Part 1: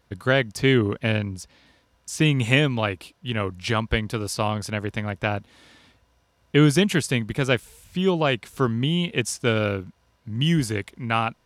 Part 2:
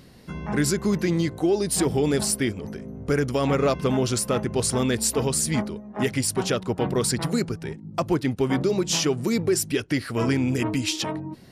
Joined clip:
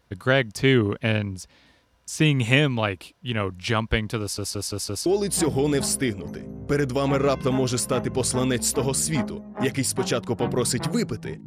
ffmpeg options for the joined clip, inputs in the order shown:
ffmpeg -i cue0.wav -i cue1.wav -filter_complex "[0:a]apad=whole_dur=11.46,atrim=end=11.46,asplit=5[link_01][link_02][link_03][link_04][link_05];[link_01]atrim=end=4.382[link_06];[link_02]atrim=start=4.208:end=4.382[link_07];[link_03]atrim=start=4.208:end=4.382[link_08];[link_04]atrim=start=4.208:end=4.382[link_09];[link_05]atrim=start=4.208:end=4.382[link_10];[1:a]atrim=start=1.448:end=7.85[link_11];[link_06][link_07]acrossfade=duration=0.004:curve1=hsin:curve2=hsin[link_12];[link_12][link_08]acrossfade=duration=0.004:curve1=hsin:curve2=hsin[link_13];[link_13][link_09]acrossfade=duration=0.004:curve1=hsin:curve2=hsin[link_14];[link_14][link_10]acrossfade=duration=0.004:curve1=hsin:curve2=hsin[link_15];[link_15][link_11]acrossfade=duration=0.004:curve1=hsin:curve2=hsin" out.wav

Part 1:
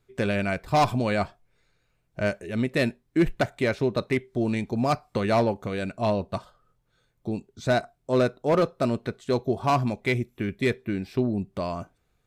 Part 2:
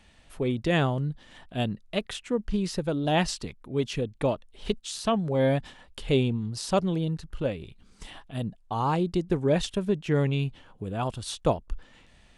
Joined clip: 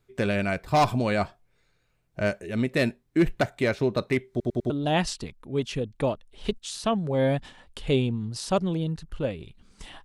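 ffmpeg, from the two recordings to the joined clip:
ffmpeg -i cue0.wav -i cue1.wav -filter_complex "[0:a]apad=whole_dur=10.04,atrim=end=10.04,asplit=4[link_01][link_02][link_03][link_04];[link_01]atrim=end=4.402[link_05];[link_02]atrim=start=4.298:end=4.402[link_06];[link_03]atrim=start=4.298:end=4.402[link_07];[link_04]atrim=start=4.298:end=4.402[link_08];[1:a]atrim=start=2.908:end=8.25[link_09];[link_05][link_06]acrossfade=duration=0.004:curve1=hsin:curve2=hsin[link_10];[link_10][link_07]acrossfade=duration=0.004:curve1=hsin:curve2=hsin[link_11];[link_11][link_08]acrossfade=duration=0.004:curve1=hsin:curve2=hsin[link_12];[link_12][link_09]acrossfade=duration=0.004:curve1=hsin:curve2=hsin" out.wav

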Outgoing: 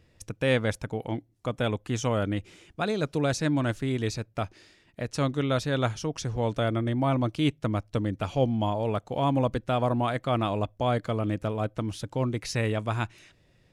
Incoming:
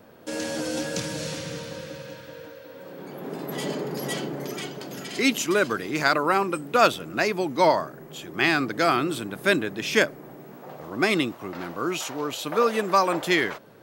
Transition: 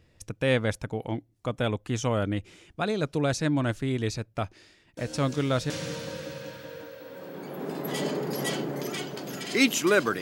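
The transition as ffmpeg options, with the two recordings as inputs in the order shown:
ffmpeg -i cue0.wav -i cue1.wav -filter_complex "[1:a]asplit=2[link_01][link_02];[0:a]apad=whole_dur=10.21,atrim=end=10.21,atrim=end=5.702[link_03];[link_02]atrim=start=1.338:end=5.85[link_04];[link_01]atrim=start=0.61:end=1.34,asetpts=PTS-STARTPTS,volume=-13.5dB,afade=type=in:duration=0.004:curve=hsin,afade=type=out:start_time=0.726:duration=0.004:curve=hsin,adelay=219177S[link_05];[link_03][link_04]acrossfade=duration=0.004:curve1=hsin:curve2=hsin[link_06];[link_06][link_05]amix=inputs=2:normalize=0" out.wav

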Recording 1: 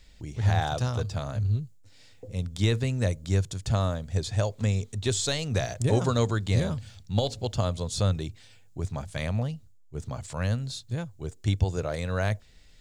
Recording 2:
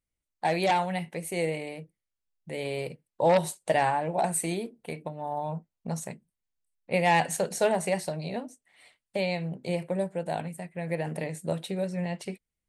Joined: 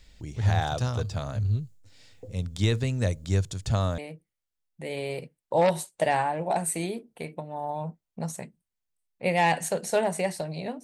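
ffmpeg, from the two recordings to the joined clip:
ffmpeg -i cue0.wav -i cue1.wav -filter_complex "[0:a]apad=whole_dur=10.83,atrim=end=10.83,atrim=end=3.982[link_01];[1:a]atrim=start=1.658:end=8.51[link_02];[link_01][link_02]acrossfade=duration=0.004:curve1=hsin:curve2=hsin" out.wav

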